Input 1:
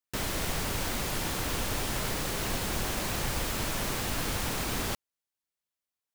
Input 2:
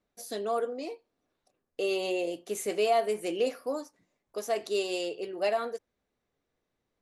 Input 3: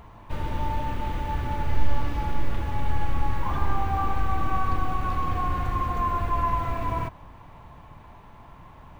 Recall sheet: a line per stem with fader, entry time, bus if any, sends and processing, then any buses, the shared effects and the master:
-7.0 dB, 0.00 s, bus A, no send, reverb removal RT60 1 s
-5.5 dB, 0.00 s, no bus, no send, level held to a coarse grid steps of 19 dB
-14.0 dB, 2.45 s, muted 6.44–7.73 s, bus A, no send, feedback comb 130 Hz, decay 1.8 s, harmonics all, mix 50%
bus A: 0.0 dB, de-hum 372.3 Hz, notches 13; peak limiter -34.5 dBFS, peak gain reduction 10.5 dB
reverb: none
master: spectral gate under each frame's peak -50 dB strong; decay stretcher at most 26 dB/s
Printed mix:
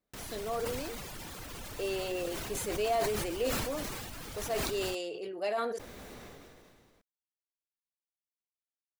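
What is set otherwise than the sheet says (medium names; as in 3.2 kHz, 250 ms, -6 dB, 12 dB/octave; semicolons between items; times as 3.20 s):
stem 2: missing level held to a coarse grid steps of 19 dB; stem 3: muted; master: missing spectral gate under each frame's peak -50 dB strong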